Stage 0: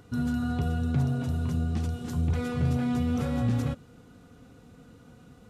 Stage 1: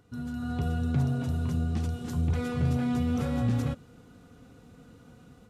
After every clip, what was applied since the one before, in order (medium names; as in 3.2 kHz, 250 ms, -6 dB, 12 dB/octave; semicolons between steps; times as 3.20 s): level rider gain up to 8 dB; trim -8.5 dB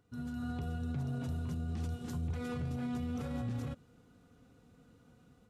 peak limiter -26.5 dBFS, peak gain reduction 9 dB; upward expansion 1.5:1, over -44 dBFS; trim -2.5 dB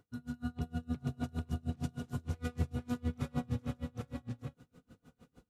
on a send: multi-tap echo 102/485/800 ms -12.5/-7/-4 dB; on the sum: logarithmic tremolo 6.5 Hz, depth 31 dB; trim +4.5 dB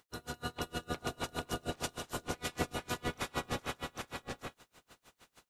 spectral peaks clipped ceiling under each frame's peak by 27 dB; trim -1.5 dB